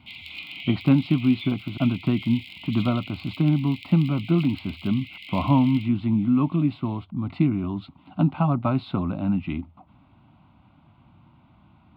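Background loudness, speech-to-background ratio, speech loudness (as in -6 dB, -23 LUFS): -39.0 LUFS, 15.0 dB, -24.0 LUFS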